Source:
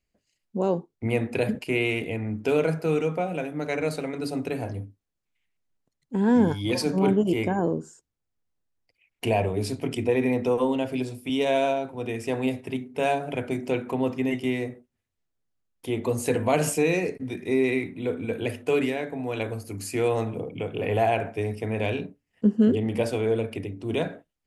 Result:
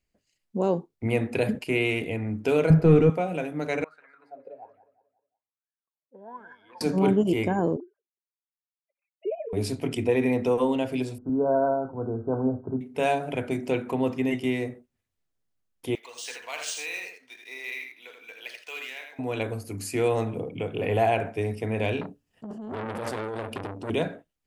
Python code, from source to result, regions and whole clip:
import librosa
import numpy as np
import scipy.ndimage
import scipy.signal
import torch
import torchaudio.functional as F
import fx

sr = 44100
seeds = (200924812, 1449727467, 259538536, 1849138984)

y = fx.chain(x, sr, fx.leveller(passes=1),
    fx.riaa(side='playback'), at=(2.7, 3.1))
y = fx.chain(y, sr, fx.wah_lfo(hz=1.2, low_hz=530.0, high_hz=1700.0, q=14.0),
    fx.echo_feedback(ms=180, feedback_pct=40, wet_db=-15), at=(3.84, 6.81))
y = fx.chain(y, sr, fx.sine_speech(),
    fx.bandpass_q(hz=300.0, q=2.2),
    fx.comb(ms=5.0, depth=0.83), at=(7.76, 9.53))
y = fx.chain(y, sr, fx.brickwall_lowpass(high_hz=1600.0),
    fx.low_shelf(hz=68.0, db=11.5), at=(11.18, 12.81))
y = fx.chain(y, sr, fx.bessel_highpass(hz=2200.0, order=2),
    fx.echo_single(ms=82, db=-5.5),
    fx.resample_linear(factor=3), at=(15.95, 19.19))
y = fx.chain(y, sr, fx.peak_eq(hz=2100.0, db=-12.0, octaves=0.32),
    fx.over_compress(threshold_db=-28.0, ratio=-1.0),
    fx.transformer_sat(knee_hz=1900.0), at=(22.01, 23.9))